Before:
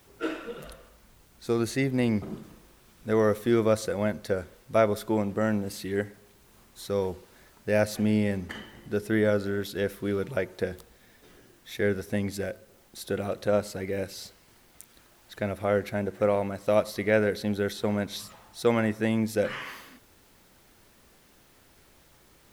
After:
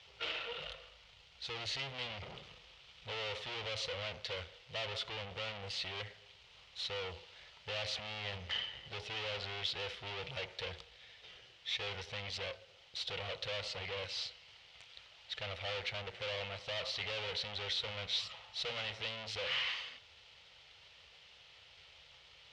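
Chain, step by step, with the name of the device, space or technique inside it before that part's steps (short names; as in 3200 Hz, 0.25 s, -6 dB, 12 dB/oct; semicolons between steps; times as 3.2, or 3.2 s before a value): scooped metal amplifier (tube stage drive 40 dB, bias 0.8; speaker cabinet 91–4300 Hz, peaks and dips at 120 Hz -3 dB, 210 Hz -9 dB, 490 Hz +6 dB, 1100 Hz -5 dB, 1600 Hz -8 dB, 3000 Hz +6 dB; passive tone stack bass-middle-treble 10-0-10); gain +13 dB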